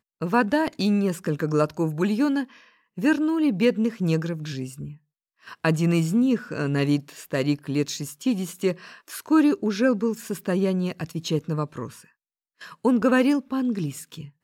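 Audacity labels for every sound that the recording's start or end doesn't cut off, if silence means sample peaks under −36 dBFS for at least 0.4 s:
2.980000	4.930000	sound
5.480000	11.970000	sound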